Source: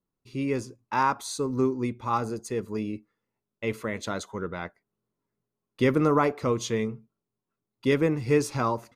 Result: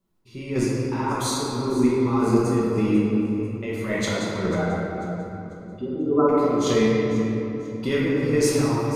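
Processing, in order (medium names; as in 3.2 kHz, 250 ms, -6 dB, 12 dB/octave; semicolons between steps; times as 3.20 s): 4.55–6.29 s: spectral contrast enhancement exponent 3.5; in parallel at +1.5 dB: compressor with a negative ratio -29 dBFS; on the sum: peak limiter -13.5 dBFS, peak gain reduction 5.5 dB; square tremolo 1.8 Hz, depth 60%, duty 35%; on a send: feedback echo behind a high-pass 493 ms, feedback 37%, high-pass 5.1 kHz, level -13.5 dB; on the sum: simulated room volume 200 m³, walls hard, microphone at 1.1 m; trim -3.5 dB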